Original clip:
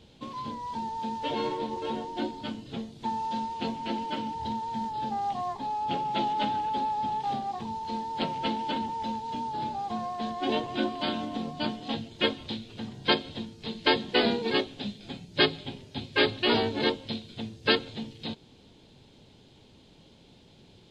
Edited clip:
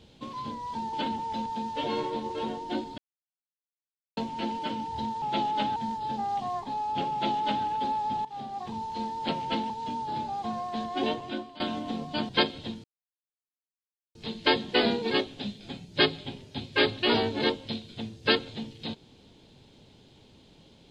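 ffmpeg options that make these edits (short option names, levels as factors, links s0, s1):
-filter_complex "[0:a]asplit=12[s0][s1][s2][s3][s4][s5][s6][s7][s8][s9][s10][s11];[s0]atrim=end=0.932[s12];[s1]atrim=start=8.628:end=9.162[s13];[s2]atrim=start=0.928:end=2.45,asetpts=PTS-STARTPTS,afade=t=out:st=1.518:d=0.004:c=hsin[s14];[s3]atrim=start=2.45:end=3.64,asetpts=PTS-STARTPTS,volume=0[s15];[s4]atrim=start=3.64:end=4.692,asetpts=PTS-STARTPTS,afade=t=in:d=0.004:c=hsin[s16];[s5]atrim=start=6.038:end=6.582[s17];[s6]atrim=start=4.688:end=7.18,asetpts=PTS-STARTPTS,afade=t=out:st=2.488:d=0.004:c=hsin:silence=0.177828[s18];[s7]atrim=start=7.18:end=8.632,asetpts=PTS-STARTPTS,afade=t=in:d=0.49:silence=0.177828[s19];[s8]atrim=start=9.158:end=11.06,asetpts=PTS-STARTPTS,afade=t=out:st=1.332:d=0.57:silence=0.11885[s20];[s9]atrim=start=11.06:end=11.752,asetpts=PTS-STARTPTS,afade=t=in:d=0.004:c=hsin:silence=0.11885[s21];[s10]atrim=start=12.998:end=13.55,asetpts=PTS-STARTPTS,afade=t=out:st=0.548:d=0.004:c=hsin,apad=pad_dur=1.31[s22];[s11]atrim=start=13.55,asetpts=PTS-STARTPTS,afade=t=in:d=0.004:c=hsin[s23];[s12][s13]acrossfade=d=0.004:c1=hsin:c2=hsin[s24];[s14][s15][s16]concat=n=3:v=0:a=1[s25];[s24][s25]acrossfade=d=0.004:c1=hsin:c2=hsin[s26];[s26][s17]acrossfade=d=0.004:c1=hsin:c2=hsin[s27];[s18][s19]concat=n=2:v=0:a=1[s28];[s27][s28]acrossfade=d=0.004:c1=hsin:c2=hsin[s29];[s20][s21]concat=n=2:v=0:a=1[s30];[s29][s30]acrossfade=d=0.004:c1=hsin:c2=hsin[s31];[s22][s23]concat=n=2:v=0:a=1[s32];[s31][s32]acrossfade=d=0.004:c1=hsin:c2=hsin"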